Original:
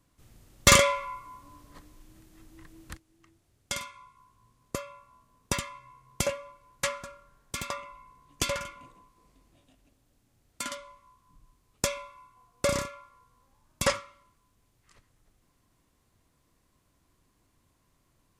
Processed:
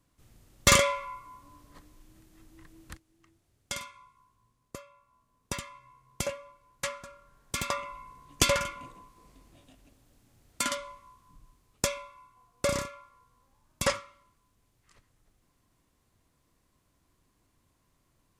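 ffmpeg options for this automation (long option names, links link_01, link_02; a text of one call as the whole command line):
ffmpeg -i in.wav -af "volume=14dB,afade=type=out:start_time=3.85:duration=1.05:silence=0.375837,afade=type=in:start_time=4.9:duration=0.94:silence=0.446684,afade=type=in:start_time=7.04:duration=0.93:silence=0.334965,afade=type=out:start_time=10.84:duration=1.16:silence=0.446684" out.wav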